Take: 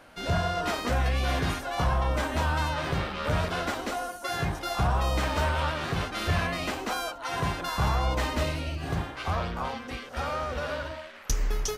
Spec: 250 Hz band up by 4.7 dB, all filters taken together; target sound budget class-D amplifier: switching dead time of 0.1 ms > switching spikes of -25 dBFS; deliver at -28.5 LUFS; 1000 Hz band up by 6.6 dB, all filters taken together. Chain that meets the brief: bell 250 Hz +6 dB; bell 1000 Hz +8 dB; switching dead time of 0.1 ms; switching spikes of -25 dBFS; gain -3 dB

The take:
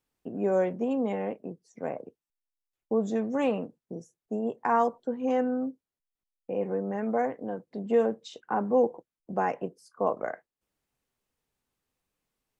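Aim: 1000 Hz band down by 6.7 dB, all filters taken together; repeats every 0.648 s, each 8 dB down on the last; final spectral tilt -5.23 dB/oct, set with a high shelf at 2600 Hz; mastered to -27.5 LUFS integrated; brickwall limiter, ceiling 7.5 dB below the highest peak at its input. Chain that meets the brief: bell 1000 Hz -9 dB; high shelf 2600 Hz -5 dB; limiter -23 dBFS; feedback echo 0.648 s, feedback 40%, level -8 dB; gain +6.5 dB

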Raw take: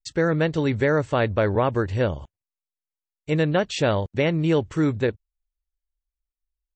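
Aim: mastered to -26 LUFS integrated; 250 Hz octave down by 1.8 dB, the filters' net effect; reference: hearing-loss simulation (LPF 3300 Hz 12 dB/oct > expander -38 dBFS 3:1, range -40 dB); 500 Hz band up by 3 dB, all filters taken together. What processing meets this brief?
LPF 3300 Hz 12 dB/oct; bell 250 Hz -4.5 dB; bell 500 Hz +4.5 dB; expander -38 dBFS 3:1, range -40 dB; gain -4 dB

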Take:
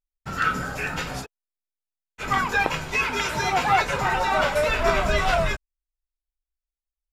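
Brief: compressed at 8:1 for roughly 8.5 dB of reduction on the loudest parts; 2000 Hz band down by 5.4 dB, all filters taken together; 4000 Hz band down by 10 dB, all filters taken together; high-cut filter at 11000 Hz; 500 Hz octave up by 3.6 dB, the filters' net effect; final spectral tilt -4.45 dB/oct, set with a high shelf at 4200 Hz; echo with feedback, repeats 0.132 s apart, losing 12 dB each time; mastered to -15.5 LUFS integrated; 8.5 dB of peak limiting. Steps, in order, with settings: LPF 11000 Hz; bell 500 Hz +5.5 dB; bell 2000 Hz -4.5 dB; bell 4000 Hz -8.5 dB; high shelf 4200 Hz -6 dB; compressor 8:1, threshold -23 dBFS; limiter -20 dBFS; feedback echo 0.132 s, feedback 25%, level -12 dB; gain +14.5 dB

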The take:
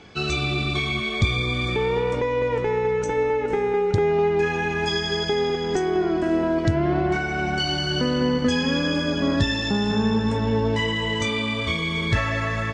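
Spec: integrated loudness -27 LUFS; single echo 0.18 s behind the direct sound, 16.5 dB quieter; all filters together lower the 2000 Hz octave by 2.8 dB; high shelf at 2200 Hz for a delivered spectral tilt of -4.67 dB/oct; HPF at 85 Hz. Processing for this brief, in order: HPF 85 Hz; bell 2000 Hz -8 dB; high shelf 2200 Hz +8 dB; echo 0.18 s -16.5 dB; gain -4.5 dB

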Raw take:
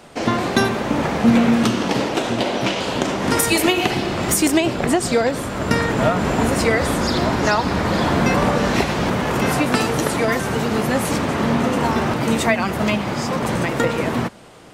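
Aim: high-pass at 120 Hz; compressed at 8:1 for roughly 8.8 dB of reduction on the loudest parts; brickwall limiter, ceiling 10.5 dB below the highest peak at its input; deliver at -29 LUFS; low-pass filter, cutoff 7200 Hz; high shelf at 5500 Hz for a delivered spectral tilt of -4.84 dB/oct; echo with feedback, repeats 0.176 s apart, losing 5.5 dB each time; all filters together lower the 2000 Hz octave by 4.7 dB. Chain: HPF 120 Hz; LPF 7200 Hz; bell 2000 Hz -6.5 dB; high shelf 5500 Hz +3.5 dB; compressor 8:1, threshold -20 dBFS; limiter -19 dBFS; feedback echo 0.176 s, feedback 53%, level -5.5 dB; gain -2.5 dB

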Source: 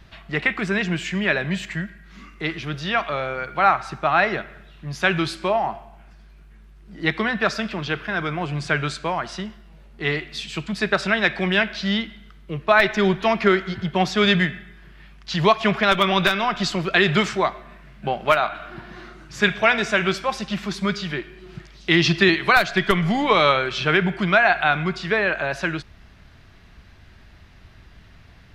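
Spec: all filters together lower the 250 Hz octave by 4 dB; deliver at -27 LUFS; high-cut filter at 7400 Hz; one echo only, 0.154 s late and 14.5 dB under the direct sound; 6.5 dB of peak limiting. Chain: LPF 7400 Hz; bell 250 Hz -6.5 dB; limiter -8.5 dBFS; echo 0.154 s -14.5 dB; gain -3.5 dB

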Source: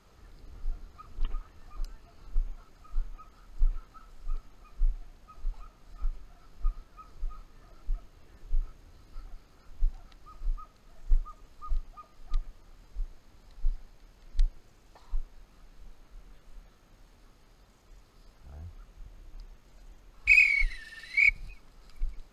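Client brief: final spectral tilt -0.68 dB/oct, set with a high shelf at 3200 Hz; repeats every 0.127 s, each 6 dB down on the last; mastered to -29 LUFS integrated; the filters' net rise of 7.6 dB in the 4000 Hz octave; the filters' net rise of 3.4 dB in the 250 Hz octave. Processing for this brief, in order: bell 250 Hz +4.5 dB; high shelf 3200 Hz +5.5 dB; bell 4000 Hz +5 dB; feedback echo 0.127 s, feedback 50%, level -6 dB; gain -4.5 dB

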